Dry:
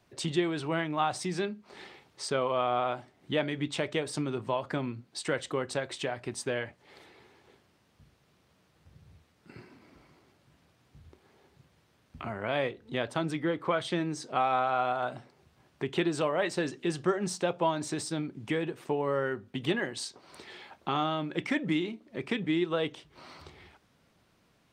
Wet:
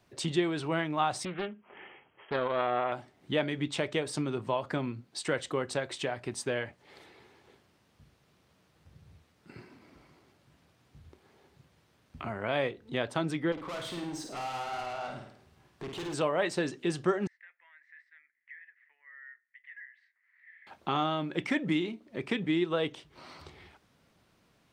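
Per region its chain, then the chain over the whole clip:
0:01.25–0:02.92: linear-phase brick-wall low-pass 3,300 Hz + low-shelf EQ 300 Hz −9 dB + highs frequency-modulated by the lows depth 0.4 ms
0:13.52–0:16.14: tube saturation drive 36 dB, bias 0.3 + flutter between parallel walls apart 9 metres, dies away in 0.61 s
0:17.27–0:20.67: flat-topped band-pass 1,900 Hz, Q 5.8 + downward compressor 2 to 1, threshold −49 dBFS
whole clip: no processing

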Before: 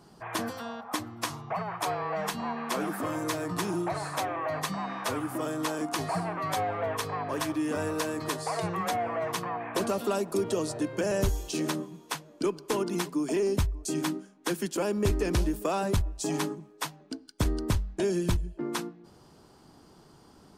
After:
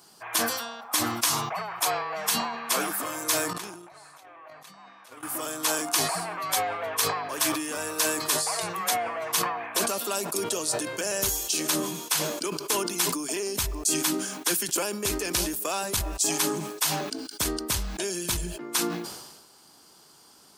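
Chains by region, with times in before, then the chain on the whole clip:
0:03.53–0:05.23: noise gate −29 dBFS, range −20 dB + compressor whose output falls as the input rises −47 dBFS + high-shelf EQ 4,800 Hz −8.5 dB
whole clip: spectral tilt +4 dB per octave; notch filter 1,900 Hz, Q 26; level that may fall only so fast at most 46 dB per second

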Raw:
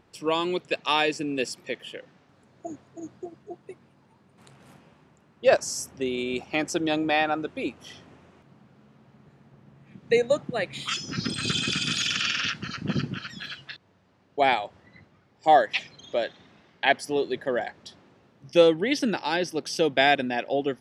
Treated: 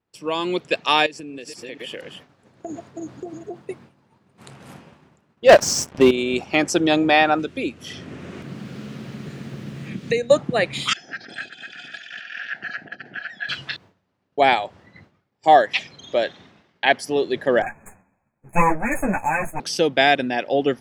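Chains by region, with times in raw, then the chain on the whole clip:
0:01.06–0:03.59: delay that plays each chunk backwards 238 ms, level −11 dB + downward compressor 8 to 1, threshold −38 dBFS
0:05.49–0:06.11: high-frequency loss of the air 92 metres + leveller curve on the samples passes 3
0:07.39–0:10.30: parametric band 870 Hz −10.5 dB 1.1 octaves + multiband upward and downward compressor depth 70%
0:10.93–0:13.49: compressor whose output falls as the input rises −31 dBFS, ratio −0.5 + pair of resonant band-passes 1,100 Hz, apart 1.2 octaves
0:17.62–0:19.60: lower of the sound and its delayed copy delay 1.2 ms + linear-phase brick-wall band-stop 2,600–6,400 Hz + string-ensemble chorus
whole clip: downward expander −51 dBFS; automatic gain control gain up to 11.5 dB; level −1 dB

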